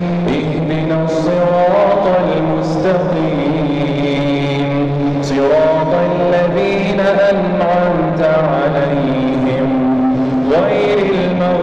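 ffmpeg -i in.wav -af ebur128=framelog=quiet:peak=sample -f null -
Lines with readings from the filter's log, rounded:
Integrated loudness:
  I:         -14.0 LUFS
  Threshold: -24.0 LUFS
Loudness range:
  LRA:         1.4 LU
  Threshold: -33.9 LUFS
  LRA low:   -14.7 LUFS
  LRA high:  -13.3 LUFS
Sample peak:
  Peak:       -4.9 dBFS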